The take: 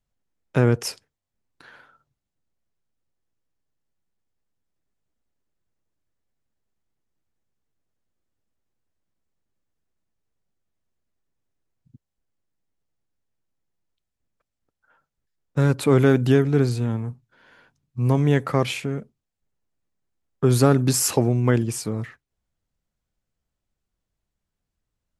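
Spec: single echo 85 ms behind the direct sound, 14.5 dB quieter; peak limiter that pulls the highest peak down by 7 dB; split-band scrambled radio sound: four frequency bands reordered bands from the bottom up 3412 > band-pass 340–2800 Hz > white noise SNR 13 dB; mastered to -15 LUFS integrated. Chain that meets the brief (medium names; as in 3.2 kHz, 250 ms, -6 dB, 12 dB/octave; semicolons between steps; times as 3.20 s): peak limiter -10.5 dBFS; delay 85 ms -14.5 dB; four frequency bands reordered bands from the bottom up 3412; band-pass 340–2800 Hz; white noise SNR 13 dB; trim +9 dB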